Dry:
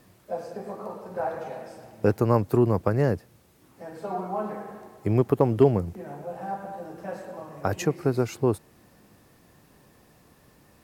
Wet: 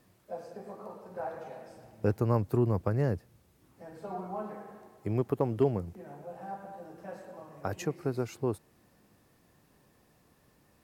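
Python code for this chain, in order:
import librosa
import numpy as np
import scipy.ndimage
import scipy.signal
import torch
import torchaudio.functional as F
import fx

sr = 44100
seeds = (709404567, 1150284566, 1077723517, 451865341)

y = fx.low_shelf(x, sr, hz=110.0, db=9.5, at=(1.68, 4.43))
y = F.gain(torch.from_numpy(y), -8.0).numpy()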